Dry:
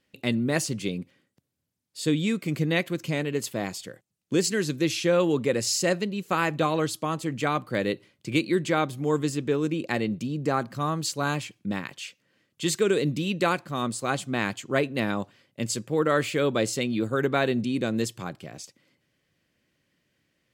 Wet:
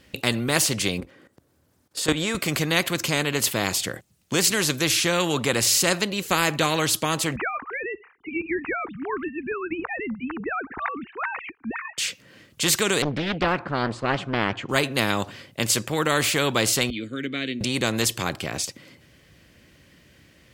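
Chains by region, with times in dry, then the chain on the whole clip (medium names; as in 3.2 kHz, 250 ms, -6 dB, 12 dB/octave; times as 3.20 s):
1.00–2.35 s: high-order bell 690 Hz +8.5 dB 2.9 oct + level held to a coarse grid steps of 14 dB
7.36–11.98 s: formants replaced by sine waves + static phaser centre 1.4 kHz, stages 4
13.02–14.69 s: low-pass 1.6 kHz + loudspeaker Doppler distortion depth 0.68 ms
16.90–17.61 s: vowel filter i + tone controls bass +1 dB, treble +6 dB + band-stop 5.4 kHz, Q 6.6
whole clip: peaking EQ 62 Hz +11 dB 1 oct; spectrum-flattening compressor 2:1; trim +1.5 dB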